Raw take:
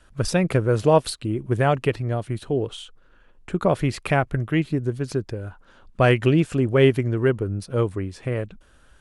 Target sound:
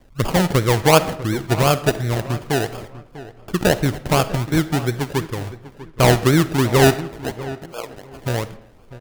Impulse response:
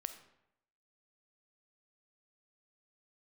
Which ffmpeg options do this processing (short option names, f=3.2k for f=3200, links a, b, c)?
-filter_complex "[0:a]asettb=1/sr,asplit=3[a][b][c];[a]atrim=end=6.944[d];[b]atrim=start=6.94:end=8.13,asetpts=PTS-STARTPTS,afade=t=in:d=0.004:c=qsin,afade=t=out:st=1.186:d=0.004:c=qsin,highpass=f=700:w=0.5412,highpass=f=700:w=1.3066[e];[c]atrim=start=8.126[f];[d][e]acrossfade=d=0.004:c1=hsin:c2=qsin[g];[g][f]acrossfade=d=0.004:c1=qsin:c2=hsin,acrusher=samples=32:mix=1:aa=0.000001:lfo=1:lforange=19.2:lforate=2.8,asplit=2[h][i];[i]adelay=646,lowpass=f=2.2k:p=1,volume=-15.5dB,asplit=2[j][k];[k]adelay=646,lowpass=f=2.2k:p=1,volume=0.23[l];[h][j][l]amix=inputs=3:normalize=0,asplit=2[m][n];[1:a]atrim=start_sample=2205[o];[n][o]afir=irnorm=-1:irlink=0,volume=5.5dB[p];[m][p]amix=inputs=2:normalize=0,volume=-4.5dB"